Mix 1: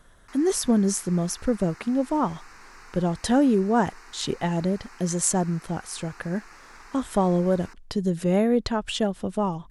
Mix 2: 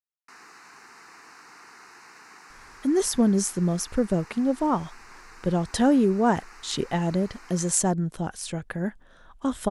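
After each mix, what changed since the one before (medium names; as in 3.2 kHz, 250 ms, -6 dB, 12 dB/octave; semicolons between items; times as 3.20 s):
speech: entry +2.50 s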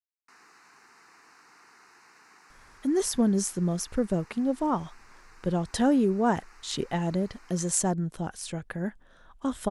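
speech -3.0 dB; background -7.5 dB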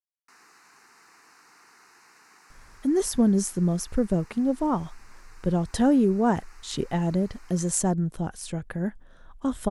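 speech: add tilt EQ -1.5 dB/octave; master: add treble shelf 8.8 kHz +10 dB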